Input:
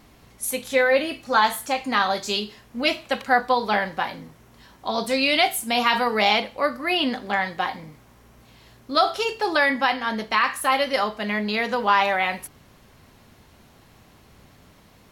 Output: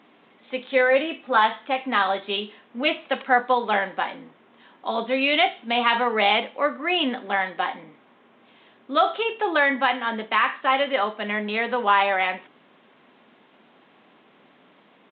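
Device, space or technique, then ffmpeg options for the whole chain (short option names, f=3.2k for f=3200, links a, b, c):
Bluetooth headset: -af "highpass=f=220:w=0.5412,highpass=f=220:w=1.3066,aresample=8000,aresample=44100" -ar 16000 -c:a sbc -b:a 64k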